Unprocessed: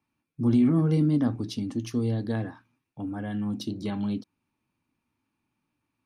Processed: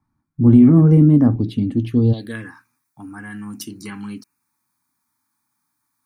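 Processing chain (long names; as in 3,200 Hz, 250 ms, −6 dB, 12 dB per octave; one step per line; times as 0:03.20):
spectral tilt −2 dB per octave, from 0:02.12 +3.5 dB per octave
phaser swept by the level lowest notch 480 Hz, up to 4,900 Hz, full sweep at −14 dBFS
level +7 dB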